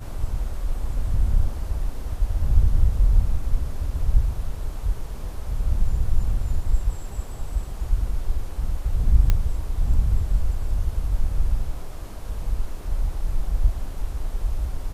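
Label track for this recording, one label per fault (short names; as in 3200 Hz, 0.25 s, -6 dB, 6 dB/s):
9.300000	9.300000	pop -8 dBFS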